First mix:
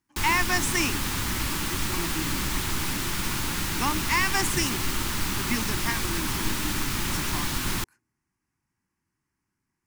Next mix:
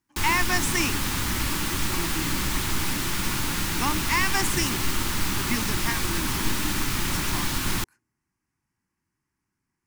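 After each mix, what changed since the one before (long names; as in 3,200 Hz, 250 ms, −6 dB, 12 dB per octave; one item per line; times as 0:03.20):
background: send +6.5 dB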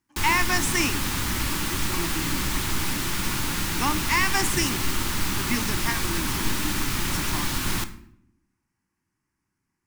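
speech: send on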